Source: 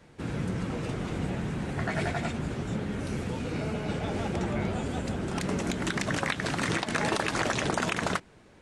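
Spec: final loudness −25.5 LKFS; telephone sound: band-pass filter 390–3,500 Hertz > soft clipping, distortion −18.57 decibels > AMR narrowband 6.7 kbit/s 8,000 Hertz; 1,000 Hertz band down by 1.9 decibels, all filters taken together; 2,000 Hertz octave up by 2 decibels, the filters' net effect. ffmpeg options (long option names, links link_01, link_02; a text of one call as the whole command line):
ffmpeg -i in.wav -af "highpass=390,lowpass=3500,equalizer=frequency=1000:width_type=o:gain=-3.5,equalizer=frequency=2000:width_type=o:gain=4,asoftclip=threshold=-18.5dB,volume=12.5dB" -ar 8000 -c:a libopencore_amrnb -b:a 6700 out.amr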